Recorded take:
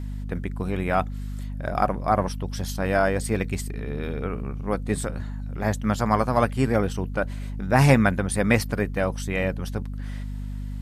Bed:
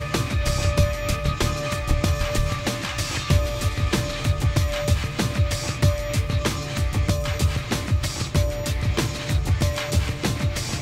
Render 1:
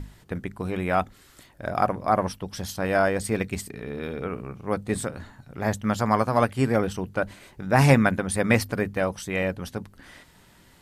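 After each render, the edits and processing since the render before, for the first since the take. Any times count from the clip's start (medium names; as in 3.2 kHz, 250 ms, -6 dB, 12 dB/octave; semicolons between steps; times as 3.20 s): hum notches 50/100/150/200/250 Hz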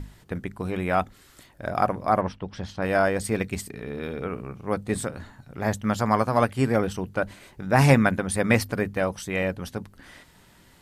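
2.21–2.82 s: low-pass 3.2 kHz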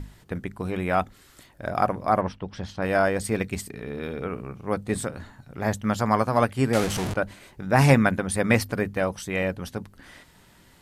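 6.73–7.14 s: one-bit delta coder 64 kbps, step -22 dBFS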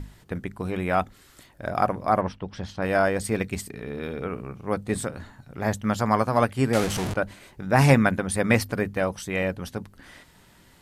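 no audible change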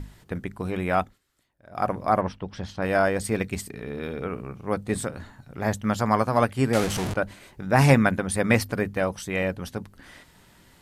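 0.99–1.90 s: dip -20 dB, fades 0.20 s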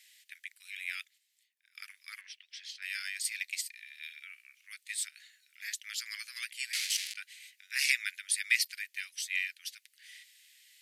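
steep high-pass 2 kHz 48 dB/octave; dynamic bell 4.6 kHz, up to +5 dB, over -50 dBFS, Q 2.7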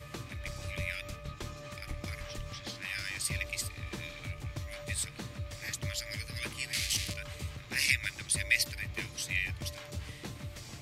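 add bed -19 dB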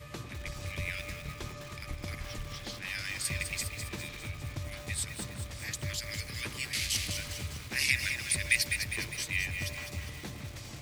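echo whose repeats swap between lows and highs 101 ms, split 1.2 kHz, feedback 79%, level -9 dB; bit-crushed delay 206 ms, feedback 55%, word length 7-bit, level -8 dB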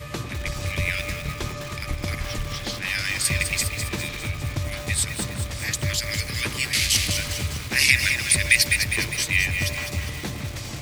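trim +11 dB; peak limiter -2 dBFS, peak gain reduction 2 dB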